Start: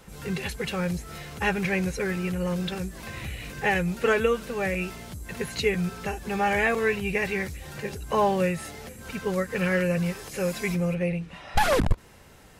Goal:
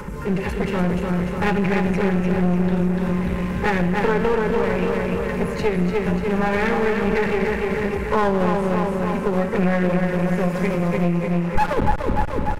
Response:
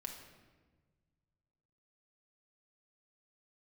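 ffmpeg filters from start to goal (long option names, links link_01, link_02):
-filter_complex "[0:a]acrossover=split=190[link_01][link_02];[link_01]acrusher=bits=5:mode=log:mix=0:aa=0.000001[link_03];[link_03][link_02]amix=inputs=2:normalize=0,asuperstop=centerf=710:order=12:qfactor=3.3,aecho=1:1:295|590|885|1180|1475|1770|2065|2360:0.596|0.345|0.2|0.116|0.0674|0.0391|0.0227|0.0132,acompressor=mode=upward:threshold=-34dB:ratio=2.5,highshelf=frequency=2300:gain=-10,asplit=2[link_04][link_05];[link_05]lowpass=frequency=3700:width=0.5412,lowpass=frequency=3700:width=1.3066[link_06];[1:a]atrim=start_sample=2205,asetrate=43659,aresample=44100[link_07];[link_06][link_07]afir=irnorm=-1:irlink=0,volume=5dB[link_08];[link_04][link_08]amix=inputs=2:normalize=0,acompressor=threshold=-19dB:ratio=3,equalizer=frequency=850:width_type=o:width=0.48:gain=5,aeval=exprs='clip(val(0),-1,0.0376)':channel_layout=same,volume=4dB"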